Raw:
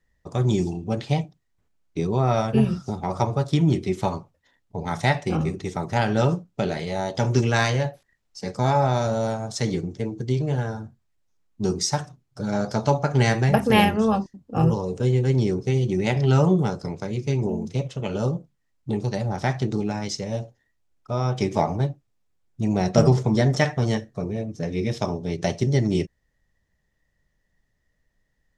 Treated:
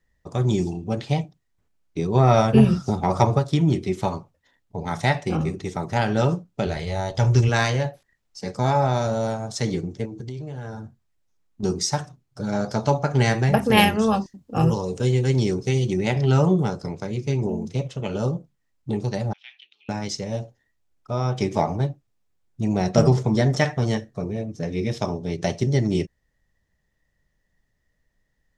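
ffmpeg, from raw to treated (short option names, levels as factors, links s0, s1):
-filter_complex "[0:a]asplit=3[s0][s1][s2];[s0]afade=t=out:st=2.14:d=0.02[s3];[s1]acontrast=39,afade=t=in:st=2.14:d=0.02,afade=t=out:st=3.38:d=0.02[s4];[s2]afade=t=in:st=3.38:d=0.02[s5];[s3][s4][s5]amix=inputs=3:normalize=0,asplit=3[s6][s7][s8];[s6]afade=t=out:st=6.66:d=0.02[s9];[s7]asubboost=boost=9.5:cutoff=71,afade=t=in:st=6.66:d=0.02,afade=t=out:st=7.48:d=0.02[s10];[s8]afade=t=in:st=7.48:d=0.02[s11];[s9][s10][s11]amix=inputs=3:normalize=0,asettb=1/sr,asplit=3[s12][s13][s14];[s12]atrim=end=10.054[s15];[s13]atrim=start=10.05:end=11.63,asetpts=PTS-STARTPTS,afade=t=in:d=0.004:c=qsin,afade=t=out:st=1.576:d=0.004:c=qsin,acompressor=threshold=0.0316:ratio=6:attack=3.2:release=140:knee=1:detection=peak[s16];[s14]atrim=start=11.626[s17];[s15][s16]acrossfade=d=0.004:c1=hsin:c2=qsin[s18];[s18][s17]acrossfade=d=0.004:c1=qsin:c2=hsin,asettb=1/sr,asplit=3[s19][s20][s21];[s19]atrim=end=13.774[s22];[s20]atrim=start=13.77:end=15.94,asetpts=PTS-STARTPTS,afade=t=in:d=0.004:c=qsin,afade=t=out:st=2.166:d=0.004:c=qsin,highshelf=f=2100:g=7.5[s23];[s21]atrim=start=15.936[s24];[s22][s23]acrossfade=d=0.004:c1=hsin:c2=qsin[s25];[s25][s24]acrossfade=d=0.004:c1=qsin:c2=hsin,asettb=1/sr,asplit=3[s26][s27][s28];[s26]atrim=end=19.334[s29];[s27]atrim=start=19.33:end=19.89,asetpts=PTS-STARTPTS,afade=t=in:d=0.004:c=qsin,afade=t=out:st=0.556:d=0.004:c=qsin,asuperpass=centerf=2900:order=4:qfactor=3.3[s30];[s28]atrim=start=19.886[s31];[s29][s30]acrossfade=d=0.004:c1=hsin:c2=qsin[s32];[s32][s31]acrossfade=d=0.004:c1=qsin:c2=hsin"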